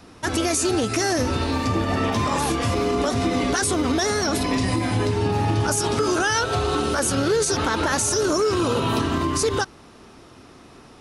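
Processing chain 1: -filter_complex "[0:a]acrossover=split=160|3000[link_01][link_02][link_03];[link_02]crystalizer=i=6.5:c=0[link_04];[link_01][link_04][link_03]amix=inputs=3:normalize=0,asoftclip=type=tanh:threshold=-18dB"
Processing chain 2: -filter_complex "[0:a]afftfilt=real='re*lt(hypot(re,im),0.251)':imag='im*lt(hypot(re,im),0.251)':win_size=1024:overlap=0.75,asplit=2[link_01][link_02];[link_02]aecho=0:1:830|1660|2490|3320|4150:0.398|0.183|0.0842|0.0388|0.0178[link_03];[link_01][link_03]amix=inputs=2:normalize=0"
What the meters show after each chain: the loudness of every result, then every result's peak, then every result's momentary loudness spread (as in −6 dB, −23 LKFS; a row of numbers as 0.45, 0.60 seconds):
−23.0, −26.0 LKFS; −18.0, −12.0 dBFS; 2, 7 LU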